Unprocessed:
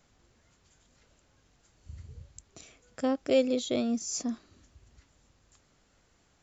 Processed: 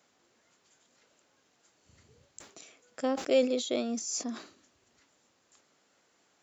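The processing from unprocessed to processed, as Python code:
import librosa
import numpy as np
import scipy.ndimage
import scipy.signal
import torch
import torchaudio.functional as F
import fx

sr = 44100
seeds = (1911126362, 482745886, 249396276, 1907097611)

y = scipy.signal.sosfilt(scipy.signal.butter(2, 280.0, 'highpass', fs=sr, output='sos'), x)
y = fx.sustainer(y, sr, db_per_s=120.0)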